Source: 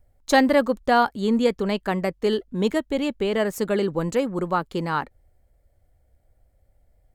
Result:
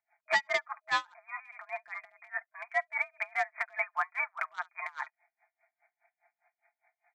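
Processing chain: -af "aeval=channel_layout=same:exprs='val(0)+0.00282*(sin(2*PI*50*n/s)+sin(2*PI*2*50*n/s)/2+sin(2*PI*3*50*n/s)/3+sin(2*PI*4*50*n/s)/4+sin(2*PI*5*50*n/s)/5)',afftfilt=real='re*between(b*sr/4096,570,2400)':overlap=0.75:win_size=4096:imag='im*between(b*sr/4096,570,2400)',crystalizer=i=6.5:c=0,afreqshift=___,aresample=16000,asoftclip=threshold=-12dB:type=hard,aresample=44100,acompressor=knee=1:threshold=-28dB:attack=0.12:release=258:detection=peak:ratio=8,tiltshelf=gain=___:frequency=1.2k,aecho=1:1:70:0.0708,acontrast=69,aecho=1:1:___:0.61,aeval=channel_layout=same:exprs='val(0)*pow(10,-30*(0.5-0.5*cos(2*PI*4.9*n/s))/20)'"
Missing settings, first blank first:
69, -7, 5.7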